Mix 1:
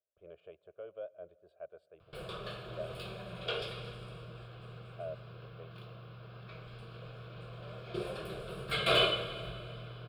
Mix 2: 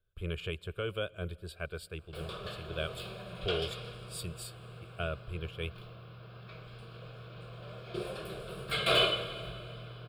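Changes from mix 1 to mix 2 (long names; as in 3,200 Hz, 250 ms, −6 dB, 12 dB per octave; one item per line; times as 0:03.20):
speech: remove resonant band-pass 620 Hz, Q 5.6
background: add high-shelf EQ 5,100 Hz +4.5 dB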